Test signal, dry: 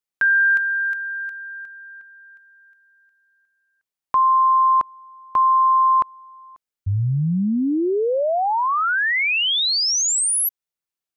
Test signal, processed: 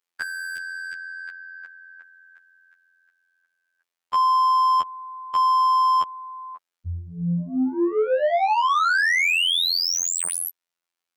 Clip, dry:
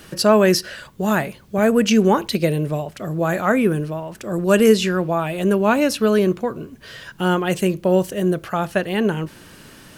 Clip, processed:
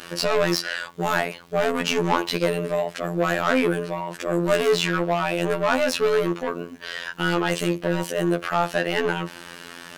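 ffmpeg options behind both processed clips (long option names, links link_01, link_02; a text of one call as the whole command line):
ffmpeg -i in.wav -filter_complex "[0:a]asplit=2[link_01][link_02];[link_02]highpass=frequency=720:poles=1,volume=25dB,asoftclip=type=tanh:threshold=-2dB[link_03];[link_01][link_03]amix=inputs=2:normalize=0,lowpass=frequency=3600:poles=1,volume=-6dB,afftfilt=real='hypot(re,im)*cos(PI*b)':imag='0':win_size=2048:overlap=0.75,volume=-7.5dB" out.wav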